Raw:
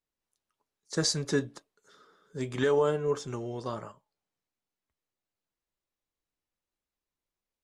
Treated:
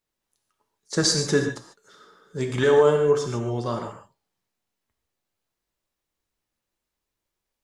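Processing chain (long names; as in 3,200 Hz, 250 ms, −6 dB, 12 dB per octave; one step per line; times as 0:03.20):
reverb whose tail is shaped and stops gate 170 ms flat, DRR 4 dB
level +6 dB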